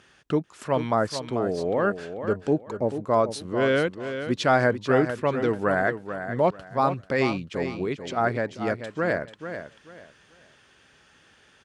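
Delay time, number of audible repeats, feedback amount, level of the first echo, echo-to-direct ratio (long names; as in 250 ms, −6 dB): 439 ms, 3, 25%, −9.5 dB, −9.0 dB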